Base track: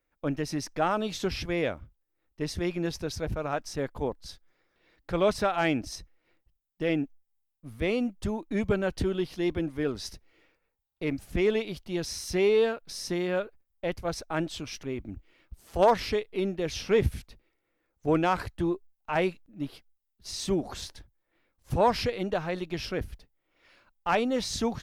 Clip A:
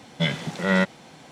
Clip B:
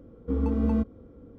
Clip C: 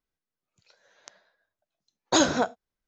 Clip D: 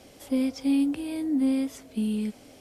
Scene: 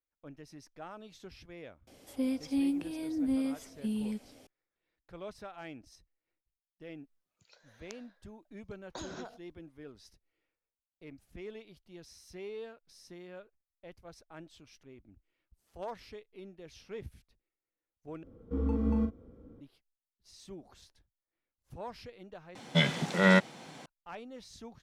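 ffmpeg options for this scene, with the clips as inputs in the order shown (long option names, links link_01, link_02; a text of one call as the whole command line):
ffmpeg -i bed.wav -i cue0.wav -i cue1.wav -i cue2.wav -i cue3.wav -filter_complex "[0:a]volume=-19.5dB[link_01];[3:a]acompressor=threshold=-41dB:ratio=6:attack=3.2:release=140:knee=1:detection=peak[link_02];[2:a]asplit=2[link_03][link_04];[link_04]adelay=40,volume=-6dB[link_05];[link_03][link_05]amix=inputs=2:normalize=0[link_06];[1:a]highpass=110[link_07];[link_01]asplit=3[link_08][link_09][link_10];[link_08]atrim=end=18.234[link_11];[link_06]atrim=end=1.38,asetpts=PTS-STARTPTS,volume=-6dB[link_12];[link_09]atrim=start=19.606:end=22.554[link_13];[link_07]atrim=end=1.31,asetpts=PTS-STARTPTS,volume=-1.5dB[link_14];[link_10]atrim=start=23.856[link_15];[4:a]atrim=end=2.6,asetpts=PTS-STARTPTS,volume=-6.5dB,afade=type=in:duration=0.004:curve=hsin,afade=type=out:start_time=2.596:duration=0.004:curve=hsin,adelay=1870[link_16];[link_02]atrim=end=2.87,asetpts=PTS-STARTPTS,volume=-1dB,afade=type=in:duration=0.004:curve=hsin,afade=type=out:start_time=2.866:duration=0.004:curve=hsin,adelay=6830[link_17];[link_11][link_12]acrossfade=duration=0.004:curve1=hsin:curve2=hsin[link_18];[link_18][link_13]acrossfade=duration=0.004:curve1=hsin:curve2=hsin[link_19];[link_19][link_14]acrossfade=duration=0.004:curve1=hsin:curve2=hsin[link_20];[link_20][link_15]acrossfade=duration=0.004:curve1=hsin:curve2=hsin[link_21];[link_21][link_16][link_17]amix=inputs=3:normalize=0" out.wav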